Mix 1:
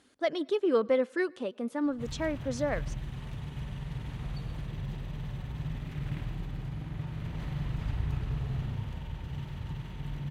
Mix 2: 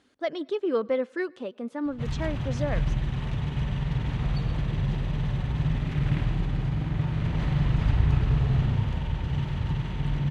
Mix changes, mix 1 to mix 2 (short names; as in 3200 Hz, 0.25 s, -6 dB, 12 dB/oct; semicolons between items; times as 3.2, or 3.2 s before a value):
background +10.0 dB; master: add air absorption 60 m